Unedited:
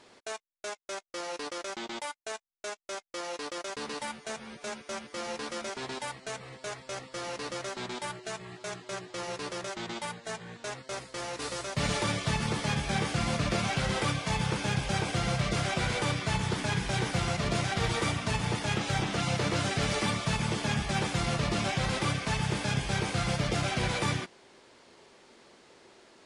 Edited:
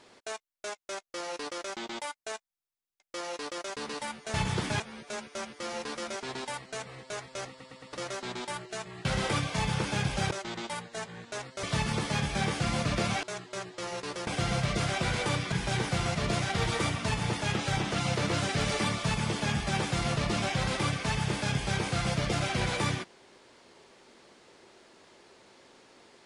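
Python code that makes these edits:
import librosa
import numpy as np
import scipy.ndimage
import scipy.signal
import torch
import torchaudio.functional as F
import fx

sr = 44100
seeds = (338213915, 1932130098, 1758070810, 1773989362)

y = fx.edit(x, sr, fx.stutter_over(start_s=2.5, slice_s=0.1, count=5),
    fx.stutter_over(start_s=7.03, slice_s=0.11, count=4),
    fx.swap(start_s=8.59, length_s=1.04, other_s=13.77, other_length_s=1.26),
    fx.cut(start_s=10.95, length_s=1.22),
    fx.move(start_s=16.28, length_s=0.46, to_s=4.34), tone=tone)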